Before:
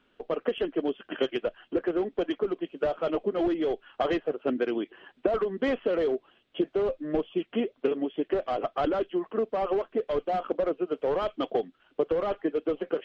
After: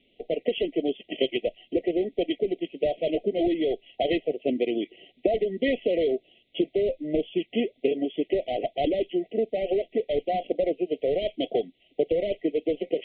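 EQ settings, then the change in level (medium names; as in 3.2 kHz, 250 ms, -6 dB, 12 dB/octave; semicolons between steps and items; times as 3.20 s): brick-wall FIR band-stop 750–1900 Hz; steep low-pass 3.9 kHz 72 dB/octave; treble shelf 2.8 kHz +7.5 dB; +2.0 dB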